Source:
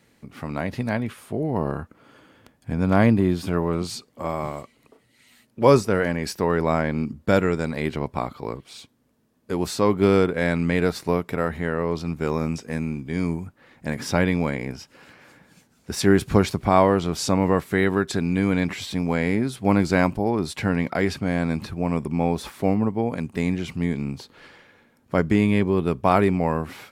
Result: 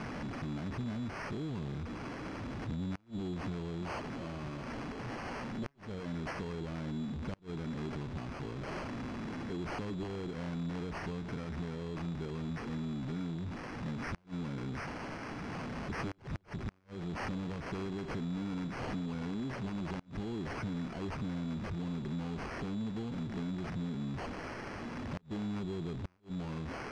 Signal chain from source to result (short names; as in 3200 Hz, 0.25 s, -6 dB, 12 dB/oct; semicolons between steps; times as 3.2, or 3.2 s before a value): zero-crossing step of -21.5 dBFS; notch 6100 Hz, Q 7.1; added harmonics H 3 -6 dB, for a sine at -2 dBFS; compressor 4:1, threshold -29 dBFS, peak gain reduction 14.5 dB; band shelf 960 Hz -10 dB 2.4 oct; sample-and-hold 12×; flipped gate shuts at -23 dBFS, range -29 dB; air absorption 120 m; gain -5 dB